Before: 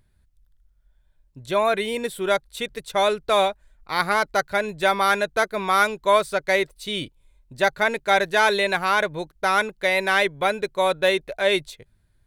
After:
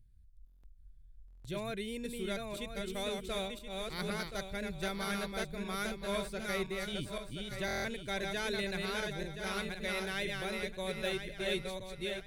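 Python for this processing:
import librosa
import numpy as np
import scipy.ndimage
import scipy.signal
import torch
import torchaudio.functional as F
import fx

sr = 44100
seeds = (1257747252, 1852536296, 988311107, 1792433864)

y = fx.reverse_delay_fb(x, sr, ms=513, feedback_pct=51, wet_db=-3)
y = fx.tone_stack(y, sr, knobs='10-0-1')
y = fx.buffer_glitch(y, sr, at_s=(0.45, 1.26, 7.66), block=1024, repeats=7)
y = F.gain(torch.from_numpy(y), 8.5).numpy()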